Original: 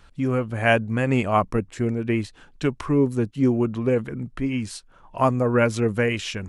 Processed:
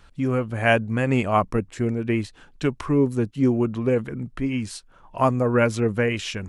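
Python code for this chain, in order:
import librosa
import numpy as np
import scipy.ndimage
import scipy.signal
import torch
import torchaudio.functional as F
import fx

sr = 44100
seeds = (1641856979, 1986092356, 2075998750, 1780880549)

y = fx.high_shelf(x, sr, hz=4900.0, db=-6.5, at=(5.76, 6.16))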